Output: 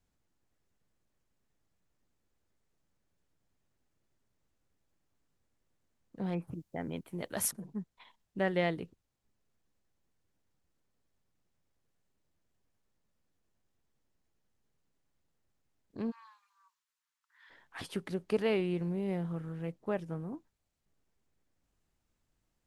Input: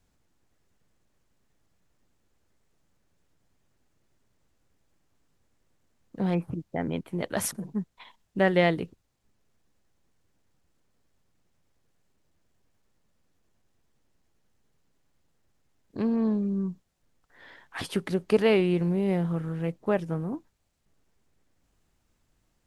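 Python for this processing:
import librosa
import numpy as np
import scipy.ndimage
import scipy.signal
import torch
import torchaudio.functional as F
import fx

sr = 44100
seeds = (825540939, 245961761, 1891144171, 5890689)

y = fx.high_shelf(x, sr, hz=7200.0, db=11.5, at=(6.47, 7.51))
y = fx.steep_highpass(y, sr, hz=930.0, slope=72, at=(16.1, 17.49), fade=0.02)
y = F.gain(torch.from_numpy(y), -8.5).numpy()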